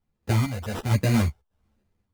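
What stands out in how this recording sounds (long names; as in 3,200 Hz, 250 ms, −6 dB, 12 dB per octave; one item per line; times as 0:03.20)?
phaser sweep stages 8, 1.2 Hz, lowest notch 300–1,100 Hz
aliases and images of a low sample rate 2,200 Hz, jitter 0%
sample-and-hold tremolo 4.4 Hz, depth 65%
a shimmering, thickened sound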